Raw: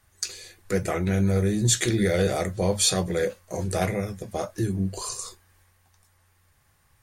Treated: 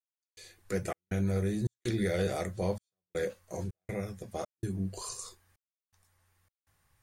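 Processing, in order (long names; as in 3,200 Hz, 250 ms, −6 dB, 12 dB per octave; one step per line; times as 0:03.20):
gate pattern "..xxx.xxx.xxxxx" 81 BPM −60 dB
level −7.5 dB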